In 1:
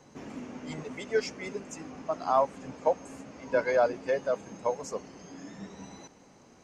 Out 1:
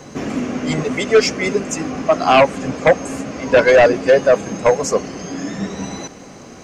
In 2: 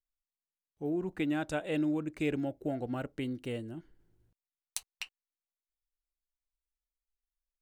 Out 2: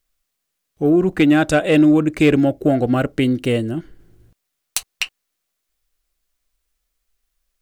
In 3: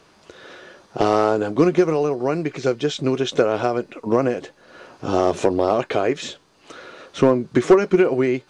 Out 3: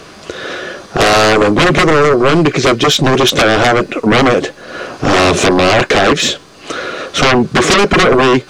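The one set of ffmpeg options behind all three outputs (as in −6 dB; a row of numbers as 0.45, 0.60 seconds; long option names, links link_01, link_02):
-af "aeval=exprs='0.562*sin(PI/2*5.62*val(0)/0.562)':channel_layout=same,bandreject=frequency=900:width=7.3"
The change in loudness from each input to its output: +14.5, +18.5, +9.5 LU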